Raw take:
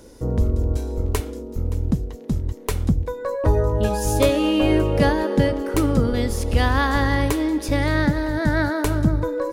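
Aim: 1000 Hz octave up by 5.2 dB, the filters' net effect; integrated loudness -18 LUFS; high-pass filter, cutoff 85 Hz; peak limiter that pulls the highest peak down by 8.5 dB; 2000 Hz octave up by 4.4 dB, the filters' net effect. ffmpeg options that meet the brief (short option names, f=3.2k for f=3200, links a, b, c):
-af "highpass=85,equalizer=f=1k:t=o:g=5.5,equalizer=f=2k:t=o:g=3.5,volume=5dB,alimiter=limit=-7dB:level=0:latency=1"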